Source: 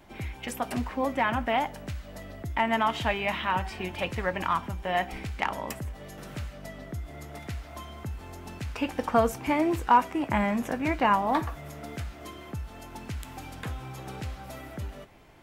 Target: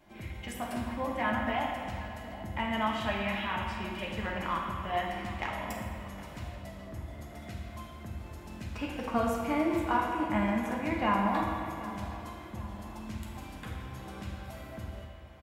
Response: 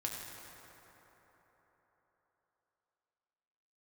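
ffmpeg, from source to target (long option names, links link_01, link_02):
-filter_complex "[0:a]asettb=1/sr,asplit=3[link_01][link_02][link_03];[link_01]atrim=end=3.554[link_04];[link_02]atrim=start=3.55:end=4.07,asetpts=PTS-STARTPTS,afade=type=in:duration=0.004:curve=qsin,afade=type=out:start_time=0.516:duration=0.004:curve=qsin,asuperstop=centerf=980:order=4:qfactor=1[link_05];[link_03]atrim=start=4.066[link_06];[link_04][link_05]acrossfade=duration=0.004:curve1=hsin:curve2=qsin[link_07];[link_07][link_06]acrossfade=duration=0.004:curve1=qsin:curve2=hsin,asplit=2[link_08][link_09];[link_09]adelay=765,lowpass=frequency=2000:poles=1,volume=-15dB,asplit=2[link_10][link_11];[link_11]adelay=765,lowpass=frequency=2000:poles=1,volume=0.53,asplit=2[link_12][link_13];[link_13]adelay=765,lowpass=frequency=2000:poles=1,volume=0.53,asplit=2[link_14][link_15];[link_15]adelay=765,lowpass=frequency=2000:poles=1,volume=0.53,asplit=2[link_16][link_17];[link_17]adelay=765,lowpass=frequency=2000:poles=1,volume=0.53[link_18];[link_08][link_10][link_12][link_14][link_16][link_18]amix=inputs=6:normalize=0[link_19];[1:a]atrim=start_sample=2205,asetrate=88200,aresample=44100[link_20];[link_19][link_20]afir=irnorm=-1:irlink=0"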